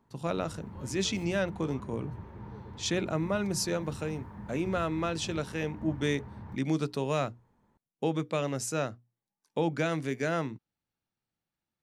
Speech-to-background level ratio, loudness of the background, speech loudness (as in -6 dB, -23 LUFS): 12.5 dB, -45.0 LUFS, -32.5 LUFS